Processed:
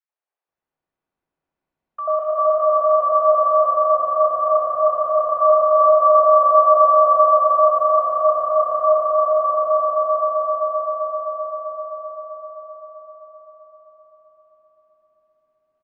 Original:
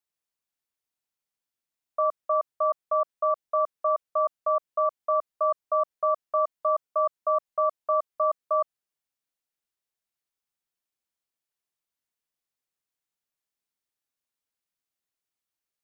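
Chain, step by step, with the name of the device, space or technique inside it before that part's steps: level-controlled noise filter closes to 1.2 kHz, open at -25.5 dBFS; cave (delay 227 ms -9 dB; reverberation RT60 4.8 s, pre-delay 106 ms, DRR -4 dB); 3.71–4.41 s: distance through air 340 m; three bands offset in time highs, mids, lows 90/480 ms, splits 430/1300 Hz; echo with a slow build-up 130 ms, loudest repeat 5, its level -7 dB; trim +7.5 dB

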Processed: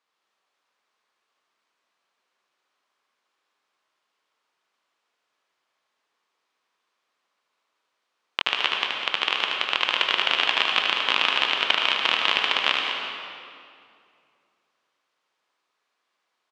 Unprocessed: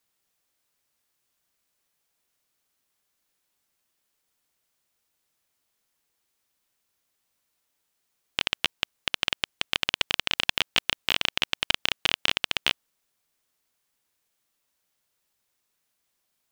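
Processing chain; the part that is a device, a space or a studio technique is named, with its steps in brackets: station announcement (band-pass 350–3800 Hz; peaking EQ 1.1 kHz +6.5 dB 0.56 oct; loudspeakers at several distances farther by 26 m -5 dB, 69 m -11 dB; reverberation RT60 2.4 s, pre-delay 87 ms, DRR 1.5 dB); trim +2 dB

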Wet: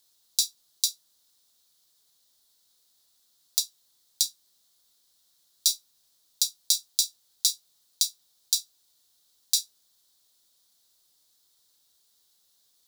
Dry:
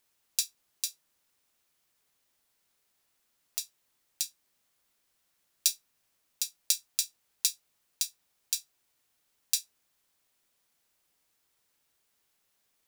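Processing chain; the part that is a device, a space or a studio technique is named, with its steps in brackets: over-bright horn tweeter (resonant high shelf 3.1 kHz +7.5 dB, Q 3; peak limiter -3.5 dBFS, peak gain reduction 8.5 dB)

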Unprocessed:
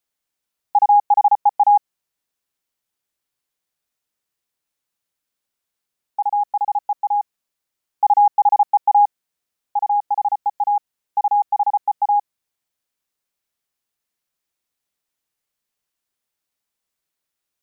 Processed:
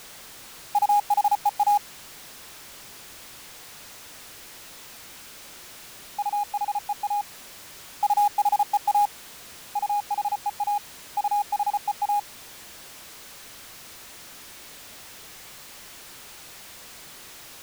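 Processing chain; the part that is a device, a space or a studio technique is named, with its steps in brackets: early CD player with a faulty converter (jump at every zero crossing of -28 dBFS; sampling jitter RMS 0.02 ms); trim -8 dB

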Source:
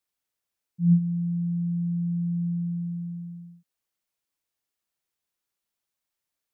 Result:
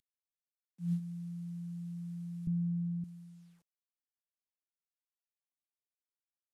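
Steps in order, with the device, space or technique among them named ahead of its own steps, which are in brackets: early wireless headset (high-pass 260 Hz 24 dB/octave; CVSD coder 64 kbps); 2.47–3.04 s: tilt EQ -4 dB/octave

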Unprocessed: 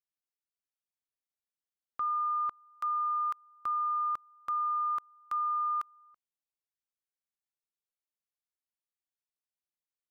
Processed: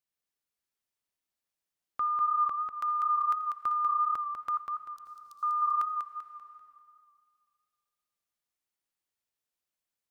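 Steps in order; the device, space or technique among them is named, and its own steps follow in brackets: 4.57–5.43 s: inverse Chebyshev high-pass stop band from 1.7 kHz, stop band 50 dB; compressed reverb return (on a send at -4 dB: reverberation RT60 1.9 s, pre-delay 70 ms + compression 6:1, threshold -45 dBFS, peak gain reduction 17 dB); on the sum: modulated delay 195 ms, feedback 37%, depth 50 cents, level -5 dB; trim +2.5 dB

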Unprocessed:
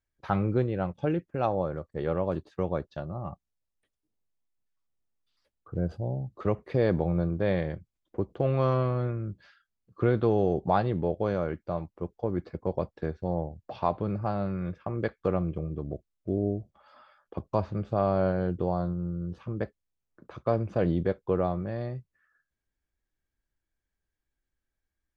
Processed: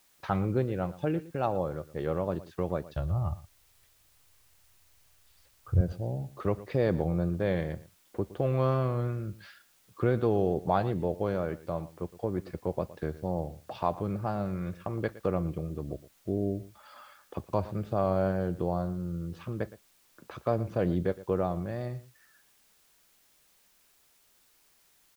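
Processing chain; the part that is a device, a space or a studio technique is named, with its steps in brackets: noise-reduction cassette on a plain deck (tape noise reduction on one side only encoder only; wow and flutter; white noise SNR 33 dB); 2.88–5.81 s: resonant low shelf 140 Hz +13 dB, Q 1.5; delay 115 ms -17.5 dB; trim -2 dB

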